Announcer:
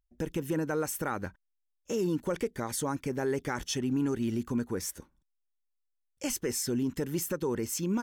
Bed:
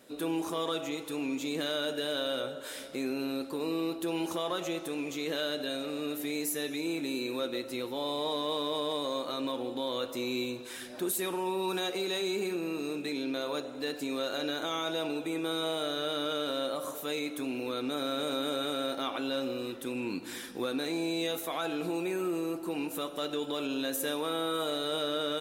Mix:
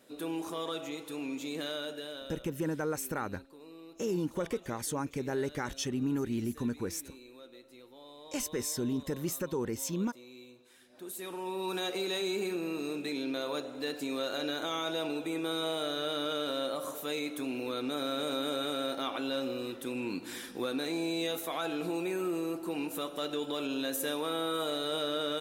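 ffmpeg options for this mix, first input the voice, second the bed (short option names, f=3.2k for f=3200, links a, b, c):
-filter_complex "[0:a]adelay=2100,volume=-2.5dB[a];[1:a]volume=13.5dB,afade=t=out:st=1.66:d=0.77:silence=0.188365,afade=t=in:st=10.88:d=1.04:silence=0.133352[b];[a][b]amix=inputs=2:normalize=0"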